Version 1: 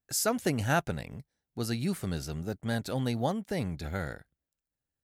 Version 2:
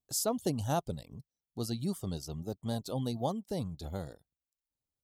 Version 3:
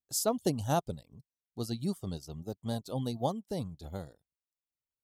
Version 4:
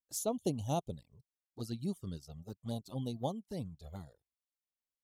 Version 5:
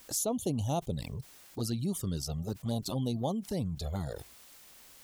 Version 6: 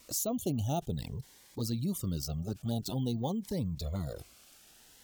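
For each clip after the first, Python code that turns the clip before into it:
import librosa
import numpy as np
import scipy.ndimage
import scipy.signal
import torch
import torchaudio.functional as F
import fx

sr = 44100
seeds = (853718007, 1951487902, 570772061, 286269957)

y1 = fx.dereverb_blind(x, sr, rt60_s=0.57)
y1 = fx.band_shelf(y1, sr, hz=1900.0, db=-15.0, octaves=1.1)
y1 = y1 * 10.0 ** (-2.5 / 20.0)
y2 = fx.upward_expand(y1, sr, threshold_db=-52.0, expansion=1.5)
y2 = y2 * 10.0 ** (3.0 / 20.0)
y3 = fx.env_flanger(y2, sr, rest_ms=3.9, full_db=-29.5)
y3 = y3 * 10.0 ** (-3.5 / 20.0)
y4 = fx.env_flatten(y3, sr, amount_pct=70)
y5 = np.repeat(scipy.signal.resample_poly(y4, 1, 2), 2)[:len(y4)]
y5 = fx.notch_cascade(y5, sr, direction='rising', hz=0.51)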